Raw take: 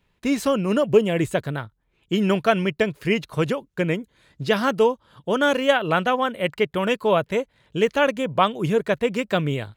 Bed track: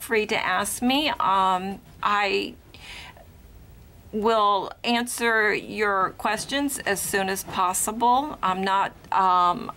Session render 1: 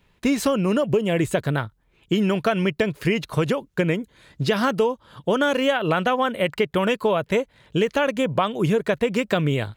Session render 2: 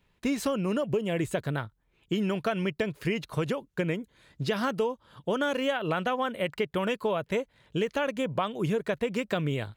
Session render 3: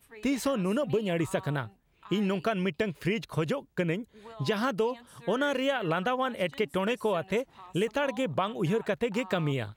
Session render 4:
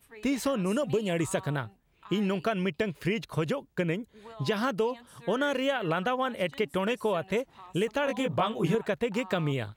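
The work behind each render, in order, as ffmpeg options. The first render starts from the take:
-filter_complex "[0:a]asplit=2[a][b];[b]alimiter=limit=-13.5dB:level=0:latency=1,volume=0dB[c];[a][c]amix=inputs=2:normalize=0,acompressor=threshold=-17dB:ratio=6"
-af "volume=-7.5dB"
-filter_complex "[1:a]volume=-26.5dB[a];[0:a][a]amix=inputs=2:normalize=0"
-filter_complex "[0:a]asettb=1/sr,asplit=3[a][b][c];[a]atrim=end=0.664[d];[b]atrim=start=0.66:end=1.4,asetpts=PTS-STARTPTS,afade=t=in:d=0.004:c=qsin,afade=t=out:st=0.736:d=0.004:c=qsin,equalizer=f=7.6k:w=1:g=8[e];[c]atrim=start=1.396[f];[d][e]acrossfade=d=0.004:c1=hsin:c2=qsin[g];[g][f]acrossfade=d=0.004:c1=qsin:c2=hsin,asettb=1/sr,asplit=3[h][i][j];[h]atrim=end=8.054[k];[i]atrim=start=8.05:end=8.75,asetpts=PTS-STARTPTS,afade=t=in:d=0.004:c=qsin,afade=t=out:st=0.696:d=0.004:c=qsin,asplit=2[l][m];[m]adelay=18,volume=-2.5dB[n];[l][n]amix=inputs=2:normalize=0,atrim=end_sample=30870[o];[j]atrim=start=8.746[p];[k][o]acrossfade=d=0.004:c1=hsin:c2=qsin[q];[q][p]acrossfade=d=0.004:c1=qsin:c2=hsin"

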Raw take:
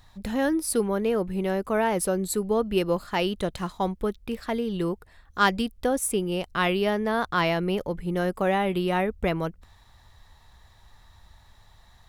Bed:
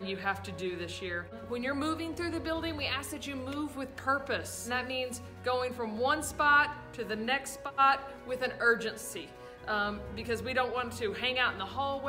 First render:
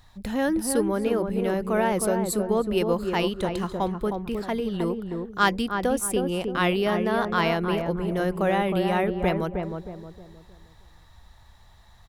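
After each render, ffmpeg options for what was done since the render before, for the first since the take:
-filter_complex "[0:a]asplit=2[a][b];[b]adelay=313,lowpass=f=990:p=1,volume=-4dB,asplit=2[c][d];[d]adelay=313,lowpass=f=990:p=1,volume=0.4,asplit=2[e][f];[f]adelay=313,lowpass=f=990:p=1,volume=0.4,asplit=2[g][h];[h]adelay=313,lowpass=f=990:p=1,volume=0.4,asplit=2[i][j];[j]adelay=313,lowpass=f=990:p=1,volume=0.4[k];[a][c][e][g][i][k]amix=inputs=6:normalize=0"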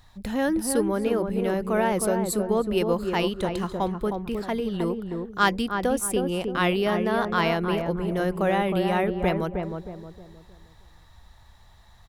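-af anull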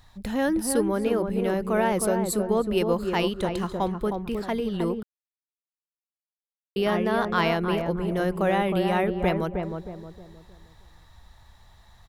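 -filter_complex "[0:a]asplit=3[a][b][c];[a]atrim=end=5.03,asetpts=PTS-STARTPTS,afade=t=out:st=5.026:d=0.004:c=hsin[d];[b]atrim=start=5.03:end=6.76,asetpts=PTS-STARTPTS,volume=0[e];[c]atrim=start=6.76,asetpts=PTS-STARTPTS,afade=t=in:d=0.004:c=hsin[f];[d][e][f]concat=n=3:v=0:a=1"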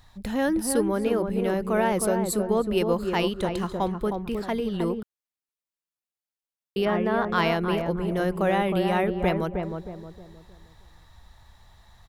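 -filter_complex "[0:a]asettb=1/sr,asplit=3[a][b][c];[a]atrim=end=6.854[d];[b]atrim=start=6.85:end=7.29,asetpts=PTS-STARTPTS,afade=t=in:d=0.004:c=qsin,afade=t=out:st=0.436:d=0.004:c=qsin,acrossover=split=2900[e][f];[f]acompressor=threshold=-55dB:ratio=4:attack=1:release=60[g];[e][g]amix=inputs=2:normalize=0[h];[c]atrim=start=7.286[i];[d][h]acrossfade=d=0.004:c1=hsin:c2=qsin[j];[j][i]acrossfade=d=0.004:c1=qsin:c2=hsin"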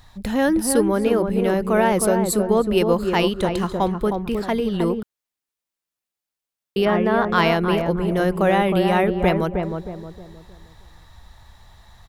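-af "volume=5.5dB"

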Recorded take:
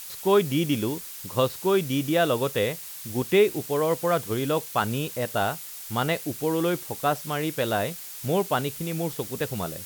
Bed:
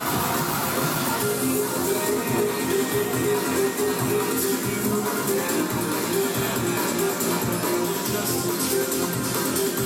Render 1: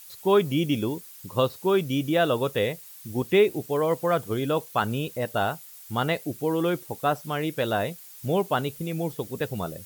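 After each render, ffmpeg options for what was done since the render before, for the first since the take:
-af "afftdn=nr=10:nf=-40"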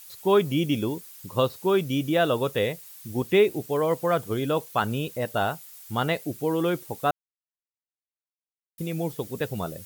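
-filter_complex "[0:a]asplit=3[a][b][c];[a]atrim=end=7.11,asetpts=PTS-STARTPTS,afade=t=out:st=7.106:d=0.004:c=hsin[d];[b]atrim=start=7.11:end=8.78,asetpts=PTS-STARTPTS,volume=0[e];[c]atrim=start=8.78,asetpts=PTS-STARTPTS,afade=t=in:d=0.004:c=hsin[f];[d][e][f]concat=n=3:v=0:a=1"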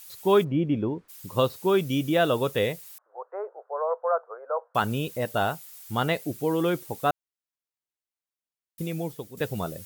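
-filter_complex "[0:a]asplit=3[a][b][c];[a]afade=t=out:st=0.43:d=0.02[d];[b]lowpass=1.4k,afade=t=in:st=0.43:d=0.02,afade=t=out:st=1.08:d=0.02[e];[c]afade=t=in:st=1.08:d=0.02[f];[d][e][f]amix=inputs=3:normalize=0,asettb=1/sr,asplit=3[g][h][i];[g]atrim=end=2.984[j];[h]atrim=start=2.98:end=4.75,asetpts=PTS-STARTPTS,afade=t=in:d=0.004:c=qsin,afade=t=out:st=1.766:d=0.004:c=qsin,asuperpass=centerf=850:order=12:qfactor=0.89[k];[i]atrim=start=4.746[l];[j][k]acrossfade=d=0.004:c1=hsin:c2=qsin[m];[m][l]acrossfade=d=0.004:c1=qsin:c2=hsin,asplit=2[n][o];[n]atrim=end=9.37,asetpts=PTS-STARTPTS,afade=t=out:st=8.83:d=0.54:silence=0.281838[p];[o]atrim=start=9.37,asetpts=PTS-STARTPTS,afade=t=in:d=0.004:c=hsin:silence=0.281838[q];[p][q]concat=n=2:v=0:a=1"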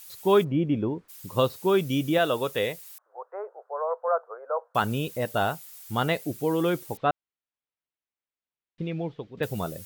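-filter_complex "[0:a]asettb=1/sr,asplit=3[a][b][c];[a]atrim=end=2.184[d];[b]atrim=start=2.18:end=4.08,asetpts=PTS-STARTPTS,afade=t=in:d=0.004:c=qsin,afade=t=out:st=1.896:d=0.004:c=qsin,lowshelf=f=280:g=-8[e];[c]atrim=start=4.076[f];[d][e]acrossfade=d=0.004:c1=hsin:c2=qsin[g];[g][f]acrossfade=d=0.004:c1=qsin:c2=hsin,asettb=1/sr,asplit=3[h][i][j];[h]atrim=end=6.974[k];[i]atrim=start=6.97:end=9.43,asetpts=PTS-STARTPTS,afade=t=in:d=0.004:c=qsin,afade=t=out:st=2.456:d=0.004:c=qsin,lowpass=f=3.6k:w=0.5412,lowpass=f=3.6k:w=1.3066[l];[j]atrim=start=9.426[m];[k][l]acrossfade=d=0.004:c1=hsin:c2=qsin[n];[n][m]acrossfade=d=0.004:c1=qsin:c2=hsin"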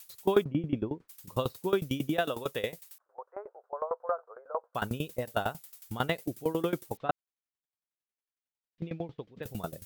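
-af "aeval=exprs='val(0)*pow(10,-19*if(lt(mod(11*n/s,1),2*abs(11)/1000),1-mod(11*n/s,1)/(2*abs(11)/1000),(mod(11*n/s,1)-2*abs(11)/1000)/(1-2*abs(11)/1000))/20)':c=same"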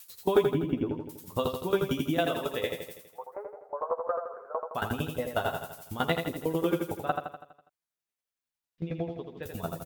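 -filter_complex "[0:a]asplit=2[a][b];[b]adelay=12,volume=-6dB[c];[a][c]amix=inputs=2:normalize=0,aecho=1:1:82|164|246|328|410|492|574:0.531|0.281|0.149|0.079|0.0419|0.0222|0.0118"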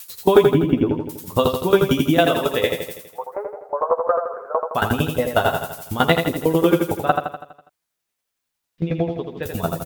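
-af "volume=11.5dB,alimiter=limit=-1dB:level=0:latency=1"

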